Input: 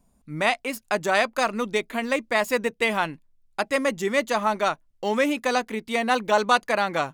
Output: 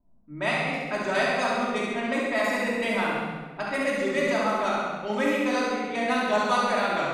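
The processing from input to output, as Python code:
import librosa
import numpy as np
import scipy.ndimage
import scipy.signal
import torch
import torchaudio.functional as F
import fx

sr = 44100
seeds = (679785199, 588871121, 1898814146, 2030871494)

y = fx.env_lowpass(x, sr, base_hz=890.0, full_db=-18.5)
y = fx.room_flutter(y, sr, wall_m=11.6, rt60_s=0.93)
y = fx.room_shoebox(y, sr, seeds[0], volume_m3=1200.0, walls='mixed', distance_m=2.8)
y = y * 10.0 ** (-9.0 / 20.0)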